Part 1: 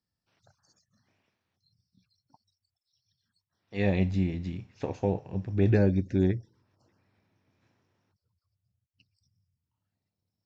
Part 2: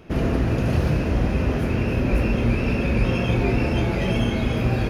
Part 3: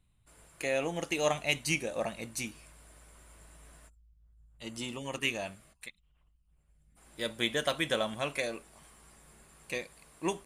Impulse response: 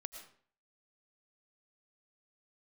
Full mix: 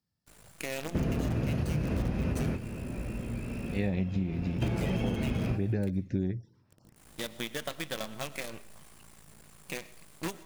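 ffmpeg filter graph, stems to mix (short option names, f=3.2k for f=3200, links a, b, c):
-filter_complex "[0:a]volume=0dB[a];[1:a]adelay=850,volume=-3.5dB,asplit=2[b][c];[c]volume=-12.5dB[d];[2:a]acompressor=threshold=-41dB:ratio=3,acrusher=bits=7:dc=4:mix=0:aa=0.000001,volume=1dB,asplit=3[e][f][g];[f]volume=-4.5dB[h];[g]apad=whole_len=253441[i];[b][i]sidechaingate=range=-33dB:threshold=-51dB:ratio=16:detection=peak[j];[3:a]atrim=start_sample=2205[k];[d][h]amix=inputs=2:normalize=0[l];[l][k]afir=irnorm=-1:irlink=0[m];[a][j][e][m]amix=inputs=4:normalize=0,equalizer=f=160:t=o:w=1.4:g=6,acompressor=threshold=-26dB:ratio=12"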